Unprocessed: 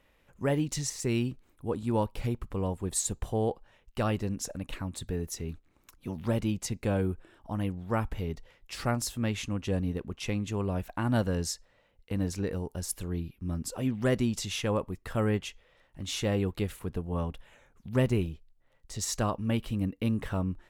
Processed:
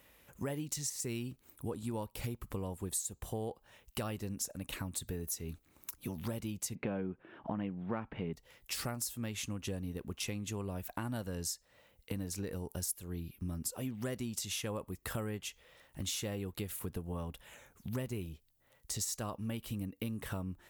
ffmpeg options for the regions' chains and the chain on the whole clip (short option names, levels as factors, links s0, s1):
-filter_complex "[0:a]asettb=1/sr,asplit=3[s0][s1][s2];[s0]atrim=end=6.754[s3];[s1]atrim=start=6.75:end=8.33,asetpts=PTS-STARTPTS,afade=t=in:d=0.004:c=qsin,afade=t=out:st=1.576:d=0.004:c=qsin,lowpass=f=2700:w=0.5412,lowpass=f=2700:w=1.3066,lowshelf=f=110:t=q:w=1.5:g=-11.5,acontrast=89[s4];[s2]atrim=start=8.326[s5];[s3][s4]acrossfade=d=0.004:c1=hsin:c2=qsin[s6];[s6][s5]acrossfade=d=0.004:c1=qsin:c2=hsin,highpass=49,aemphasis=mode=production:type=50fm,acompressor=threshold=0.0126:ratio=6,volume=1.26"